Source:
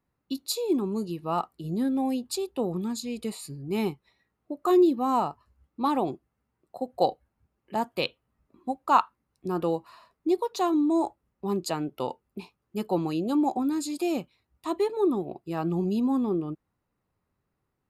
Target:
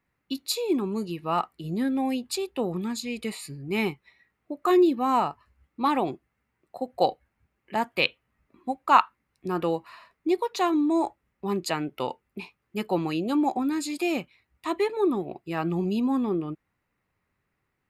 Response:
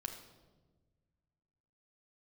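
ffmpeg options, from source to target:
-af "equalizer=frequency=2100:width=1.3:gain=11.5"

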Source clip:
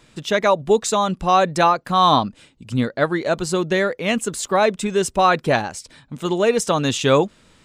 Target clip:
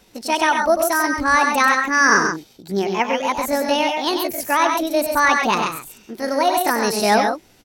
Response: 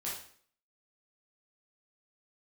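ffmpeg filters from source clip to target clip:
-af "asetrate=68011,aresample=44100,atempo=0.64842,aecho=1:1:96.21|134.1:0.447|0.501,volume=-1dB"

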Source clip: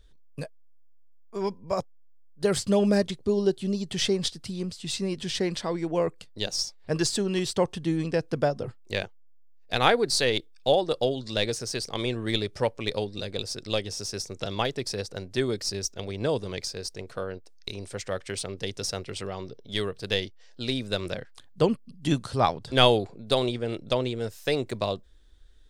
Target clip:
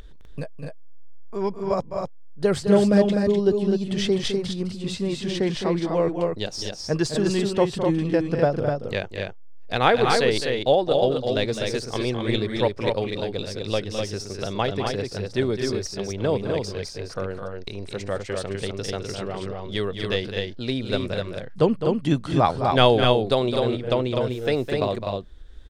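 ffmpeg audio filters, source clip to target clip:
ffmpeg -i in.wav -af "highshelf=frequency=3900:gain=-11.5,acompressor=mode=upward:threshold=-36dB:ratio=2.5,aecho=1:1:209.9|250.7:0.355|0.631,volume=3.5dB" out.wav

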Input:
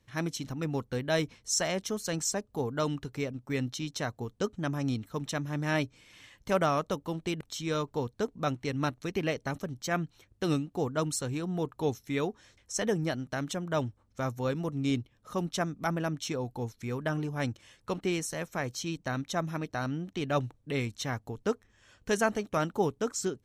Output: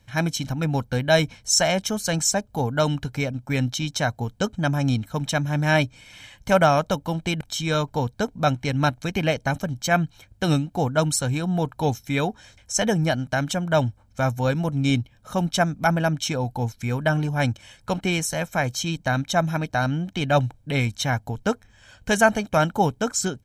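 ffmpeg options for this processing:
ffmpeg -i in.wav -af "aecho=1:1:1.3:0.56,volume=8.5dB" out.wav

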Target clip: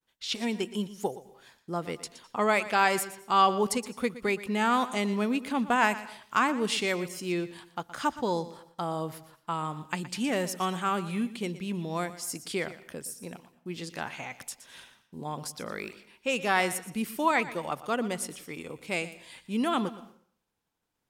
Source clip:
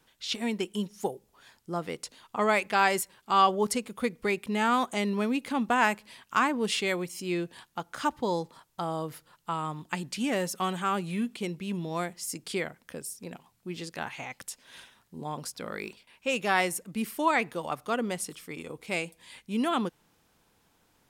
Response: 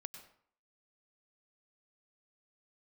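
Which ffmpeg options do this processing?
-filter_complex "[0:a]agate=range=-33dB:threshold=-56dB:ratio=3:detection=peak,asplit=2[link_01][link_02];[link_02]equalizer=frequency=5800:width_type=o:width=0.39:gain=5[link_03];[1:a]atrim=start_sample=2205,asetrate=48510,aresample=44100,adelay=119[link_04];[link_03][link_04]afir=irnorm=-1:irlink=0,volume=-9.5dB[link_05];[link_01][link_05]amix=inputs=2:normalize=0"

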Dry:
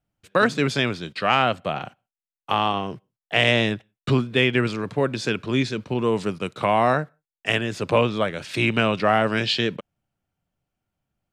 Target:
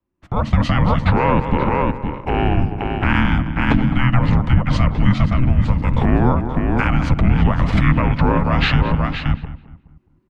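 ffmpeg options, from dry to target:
ffmpeg -i in.wav -filter_complex "[0:a]firequalizer=gain_entry='entry(110,0);entry(180,-6);entry(300,9);entry(560,6);entry(880,-11);entry(1300,5);entry(1900,-1);entry(4100,-8);entry(9000,-17)':delay=0.05:min_phase=1,asplit=2[link_01][link_02];[link_02]aecho=0:1:574:0.251[link_03];[link_01][link_03]amix=inputs=2:normalize=0,adynamicequalizer=threshold=0.0141:dfrequency=110:dqfactor=1.3:tfrequency=110:tqfactor=1.3:attack=5:release=100:ratio=0.375:range=2.5:mode=cutabove:tftype=bell,bandreject=frequency=50:width_type=h:width=6,bandreject=frequency=100:width_type=h:width=6,bandreject=frequency=150:width_type=h:width=6,bandreject=frequency=200:width_type=h:width=6,bandreject=frequency=250:width_type=h:width=6,acompressor=threshold=-18dB:ratio=5,atempo=1.1,asplit=2[link_04][link_05];[link_05]adelay=211,lowpass=frequency=1900:poles=1,volume=-13dB,asplit=2[link_06][link_07];[link_07]adelay=211,lowpass=frequency=1900:poles=1,volume=0.39,asplit=2[link_08][link_09];[link_09]adelay=211,lowpass=frequency=1900:poles=1,volume=0.39,asplit=2[link_10][link_11];[link_11]adelay=211,lowpass=frequency=1900:poles=1,volume=0.39[link_12];[link_06][link_08][link_10][link_12]amix=inputs=4:normalize=0[link_13];[link_04][link_13]amix=inputs=2:normalize=0,alimiter=limit=-17.5dB:level=0:latency=1:release=72,dynaudnorm=framelen=110:gausssize=7:maxgain=10dB,asplit=2[link_14][link_15];[link_15]asetrate=29433,aresample=44100,atempo=1.49831,volume=-1dB[link_16];[link_14][link_16]amix=inputs=2:normalize=0,afreqshift=-380" out.wav

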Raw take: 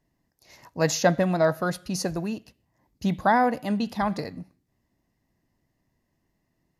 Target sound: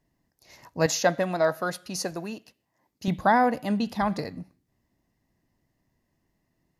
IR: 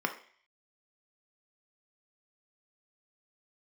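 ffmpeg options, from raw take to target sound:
-filter_complex "[0:a]asettb=1/sr,asplit=3[link_01][link_02][link_03];[link_01]atrim=end=0.864[link_04];[link_02]atrim=start=0.86:end=3.08,asetpts=PTS-STARTPTS,afade=type=in:duration=0.004:curve=qsin,afade=type=out:start_time=2.216:duration=0.004:curve=qsin,highpass=frequency=390:poles=1[link_05];[link_03]atrim=start=3.076[link_06];[link_04][link_05]acrossfade=duration=0.004:curve1=hsin:curve2=qsin[link_07];[link_07][link_06]acrossfade=duration=0.004:curve1=qsin:curve2=hsin"

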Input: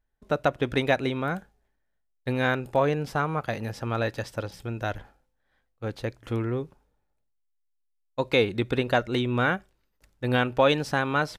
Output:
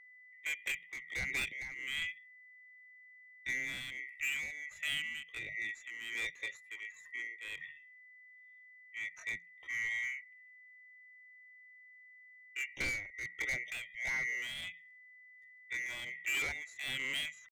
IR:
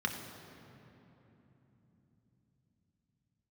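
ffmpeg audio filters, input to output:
-filter_complex "[0:a]afftfilt=real='real(if(lt(b,920),b+92*(1-2*mod(floor(b/92),2)),b),0)':imag='imag(if(lt(b,920),b+92*(1-2*mod(floor(b/92),2)),b),0)':win_size=2048:overlap=0.75,afftdn=noise_reduction=14:noise_floor=-46,highshelf=frequency=5700:gain=-2.5,acrossover=split=220|3000[link_01][link_02][link_03];[link_02]acompressor=threshold=-24dB:ratio=3[link_04];[link_01][link_04][link_03]amix=inputs=3:normalize=0,afreqshift=-170,asoftclip=type=tanh:threshold=-20dB,atempo=0.65,volume=25dB,asoftclip=hard,volume=-25dB,tremolo=f=1.4:d=0.64,aeval=exprs='val(0)+0.00355*sin(2*PI*2000*n/s)':channel_layout=same,volume=-6.5dB"

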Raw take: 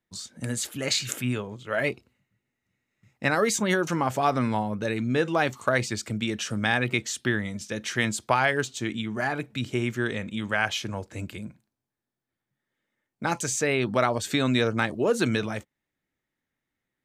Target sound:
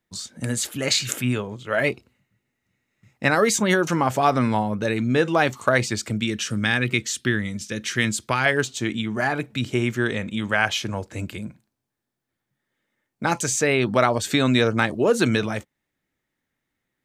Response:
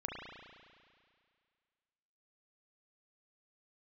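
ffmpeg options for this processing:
-filter_complex "[0:a]asettb=1/sr,asplit=3[link_01][link_02][link_03];[link_01]atrim=end=6.204[link_04];[link_02]atrim=start=6.2:end=8.46,asetpts=PTS-STARTPTS,afade=type=in:duration=0.004:curve=qsin,afade=type=out:start_time=2.256:duration=0.004:curve=qsin,equalizer=frequency=750:width=1.3:gain=-9.5[link_05];[link_03]atrim=start=8.456[link_06];[link_04][link_05]acrossfade=duration=0.004:curve1=hsin:curve2=qsin[link_07];[link_07][link_06]acrossfade=duration=0.004:curve1=qsin:curve2=hsin,volume=4.5dB"

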